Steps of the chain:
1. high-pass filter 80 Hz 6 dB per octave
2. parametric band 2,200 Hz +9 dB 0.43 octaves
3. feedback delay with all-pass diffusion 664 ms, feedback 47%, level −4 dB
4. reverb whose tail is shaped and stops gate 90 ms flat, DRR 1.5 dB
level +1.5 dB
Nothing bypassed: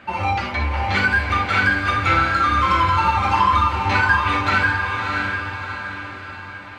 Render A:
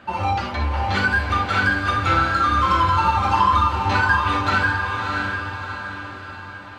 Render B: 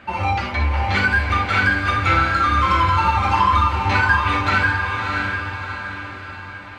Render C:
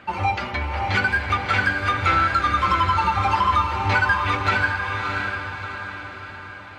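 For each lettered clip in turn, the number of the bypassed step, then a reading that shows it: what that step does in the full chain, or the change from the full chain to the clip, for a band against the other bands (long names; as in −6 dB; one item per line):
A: 2, 2 kHz band −2.0 dB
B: 1, 125 Hz band +2.5 dB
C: 4, change in integrated loudness −2.5 LU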